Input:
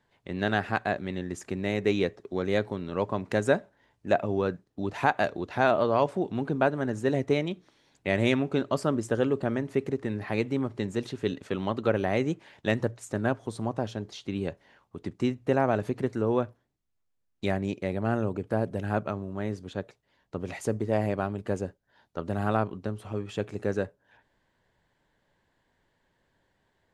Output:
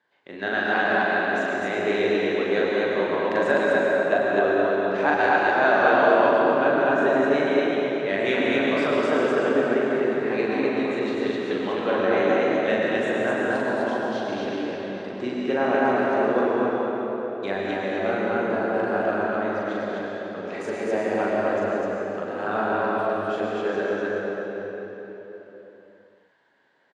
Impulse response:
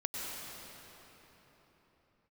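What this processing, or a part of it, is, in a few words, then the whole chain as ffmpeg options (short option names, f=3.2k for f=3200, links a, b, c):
station announcement: -filter_complex "[0:a]highpass=320,lowpass=4.9k,equalizer=f=1.6k:t=o:w=0.3:g=5.5,aecho=1:1:40.82|253.6:0.794|0.891[a];[1:a]atrim=start_sample=2205[b];[a][b]afir=irnorm=-1:irlink=0"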